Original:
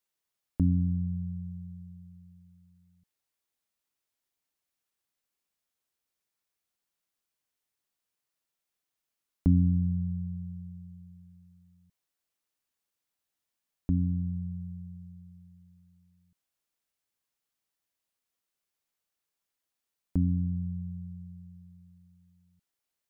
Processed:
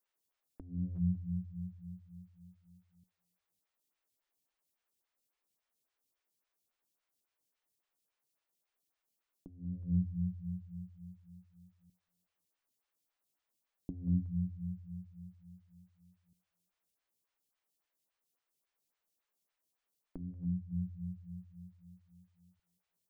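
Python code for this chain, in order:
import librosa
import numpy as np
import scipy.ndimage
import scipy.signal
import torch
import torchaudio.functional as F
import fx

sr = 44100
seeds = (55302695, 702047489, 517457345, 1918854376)

y = fx.echo_feedback(x, sr, ms=185, feedback_pct=43, wet_db=-20)
y = fx.over_compress(y, sr, threshold_db=-29.0, ratio=-0.5)
y = fx.comb_fb(y, sr, f0_hz=58.0, decay_s=0.47, harmonics='all', damping=0.0, mix_pct=60, at=(20.16, 20.71), fade=0.02)
y = fx.stagger_phaser(y, sr, hz=3.6)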